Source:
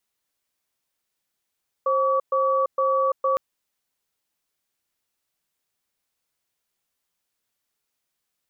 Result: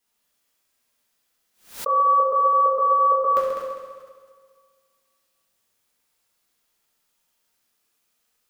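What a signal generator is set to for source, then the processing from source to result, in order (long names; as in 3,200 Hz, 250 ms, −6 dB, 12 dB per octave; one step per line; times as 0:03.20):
tone pair in a cadence 532 Hz, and 1,140 Hz, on 0.34 s, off 0.12 s, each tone −21 dBFS 1.51 s
on a send: echo machine with several playback heads 67 ms, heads all three, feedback 52%, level −10 dB
on the sum: coupled-rooms reverb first 0.91 s, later 2.3 s, DRR −4.5 dB
background raised ahead of every attack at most 140 dB per second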